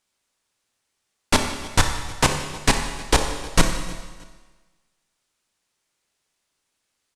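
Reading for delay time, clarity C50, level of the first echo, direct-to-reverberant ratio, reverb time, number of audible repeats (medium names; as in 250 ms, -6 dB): 312 ms, 6.0 dB, -21.5 dB, 4.5 dB, 1.4 s, 2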